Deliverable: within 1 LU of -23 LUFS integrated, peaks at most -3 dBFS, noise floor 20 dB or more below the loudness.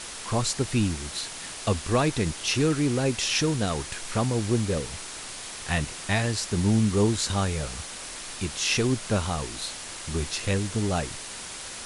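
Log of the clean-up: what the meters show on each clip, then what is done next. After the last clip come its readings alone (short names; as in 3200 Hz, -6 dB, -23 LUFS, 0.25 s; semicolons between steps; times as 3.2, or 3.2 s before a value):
noise floor -39 dBFS; noise floor target -47 dBFS; loudness -27.0 LUFS; peak -10.5 dBFS; loudness target -23.0 LUFS
-> noise print and reduce 8 dB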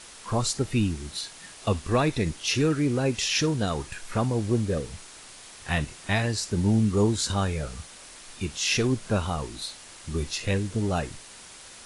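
noise floor -47 dBFS; loudness -27.0 LUFS; peak -10.5 dBFS; loudness target -23.0 LUFS
-> gain +4 dB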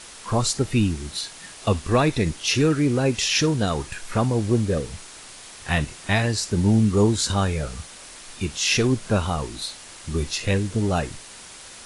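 loudness -23.0 LUFS; peak -6.5 dBFS; noise floor -43 dBFS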